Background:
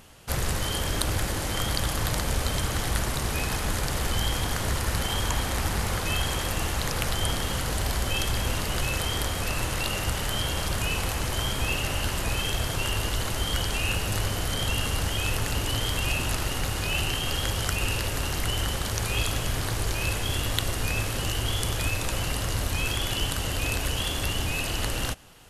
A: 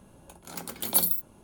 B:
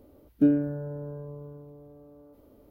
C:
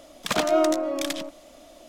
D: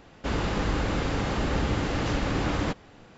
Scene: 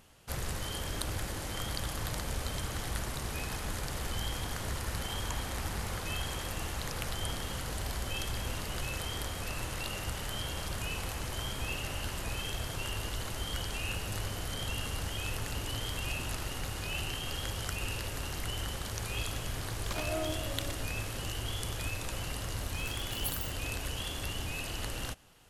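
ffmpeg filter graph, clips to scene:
-filter_complex "[0:a]volume=-9dB[a];[1:a]acrusher=bits=7:mix=0:aa=0.000001[b];[3:a]atrim=end=1.88,asetpts=PTS-STARTPTS,volume=-15.5dB,afade=t=in:d=0.004:c=hsin,afade=t=out:st=1.876:d=0.004:c=hsin,adelay=19600[c];[b]atrim=end=1.43,asetpts=PTS-STARTPTS,volume=-14.5dB,afade=t=in:d=0.004:c=hsin,afade=t=out:st=1.426:d=0.004:c=hsin,adelay=22300[d];[a][c][d]amix=inputs=3:normalize=0"

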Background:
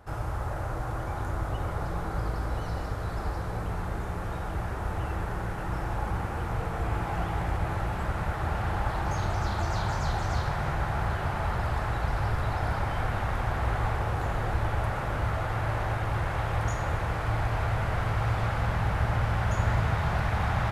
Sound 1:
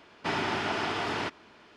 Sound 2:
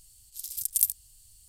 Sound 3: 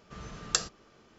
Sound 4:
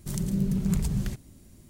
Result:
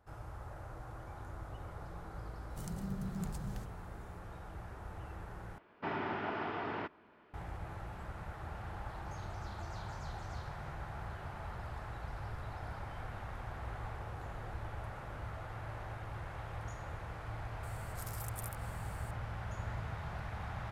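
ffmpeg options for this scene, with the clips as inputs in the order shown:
-filter_complex "[0:a]volume=-15dB[a];[1:a]lowpass=1.8k[b];[2:a]acompressor=threshold=-42dB:ratio=6:attack=3.2:release=140:knee=1:detection=peak[c];[a]asplit=2[d][e];[d]atrim=end=5.584[f];[b]atrim=end=1.76,asetpts=PTS-STARTPTS,volume=-6.5dB[g];[e]atrim=start=7.336[h];[4:a]atrim=end=1.69,asetpts=PTS-STARTPTS,volume=-14dB,afade=t=in:d=0.004:c=hsin,afade=t=out:st=1.686:d=0.004:c=hsin,adelay=2500[i];[c]atrim=end=1.48,asetpts=PTS-STARTPTS,volume=-3.5dB,afade=t=in:d=0.004:c=hsin,afade=t=out:st=1.476:d=0.004:c=hsin,adelay=17630[j];[f][g]acrossfade=d=0.004:c1=hsin:c2=hsin[k];[k][h]acrossfade=d=0.004:c1=hsin:c2=hsin[l];[l][i][j]amix=inputs=3:normalize=0"

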